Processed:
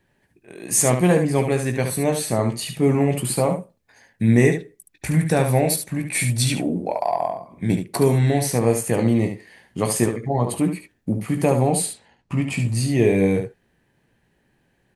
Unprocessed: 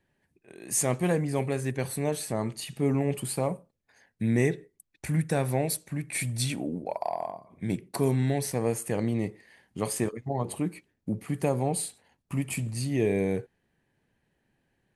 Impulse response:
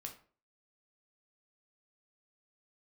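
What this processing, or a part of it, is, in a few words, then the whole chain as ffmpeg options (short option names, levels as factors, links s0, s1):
slapback doubling: -filter_complex "[0:a]asettb=1/sr,asplit=3[s0][s1][s2];[s0]atrim=end=11.864[s3];[s1]atrim=start=11.86:end=12.63,asetpts=PTS-STARTPTS,afade=t=in:d=0.004:c=qsin,afade=t=out:st=0.766:d=0.004:c=qsin,lowpass=5500[s4];[s2]atrim=start=12.626[s5];[s3][s4]acrossfade=d=0.004:c1=hsin:c2=qsin[s6];[s6][s5]acrossfade=d=0.004:c1=qsin:c2=hsin,asplit=3[s7][s8][s9];[s8]adelay=17,volume=0.355[s10];[s9]adelay=72,volume=0.447[s11];[s7][s10][s11]amix=inputs=3:normalize=0,volume=2.37"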